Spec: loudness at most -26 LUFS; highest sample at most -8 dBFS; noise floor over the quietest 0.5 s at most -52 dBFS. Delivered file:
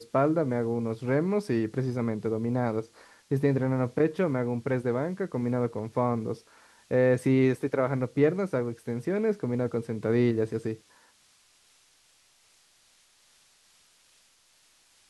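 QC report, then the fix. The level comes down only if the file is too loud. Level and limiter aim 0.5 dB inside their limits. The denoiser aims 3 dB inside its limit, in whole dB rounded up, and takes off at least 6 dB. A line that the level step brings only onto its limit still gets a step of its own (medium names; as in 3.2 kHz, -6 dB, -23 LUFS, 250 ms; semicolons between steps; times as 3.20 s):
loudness -28.0 LUFS: pass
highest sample -11.5 dBFS: pass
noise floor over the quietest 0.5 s -63 dBFS: pass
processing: none needed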